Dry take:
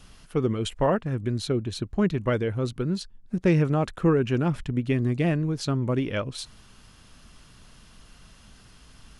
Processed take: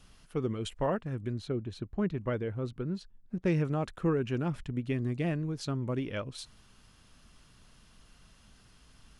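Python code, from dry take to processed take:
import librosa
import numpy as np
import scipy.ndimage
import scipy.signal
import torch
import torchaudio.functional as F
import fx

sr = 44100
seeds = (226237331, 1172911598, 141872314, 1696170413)

y = fx.high_shelf(x, sr, hz=4000.0, db=-12.0, at=(1.33, 3.45))
y = F.gain(torch.from_numpy(y), -7.5).numpy()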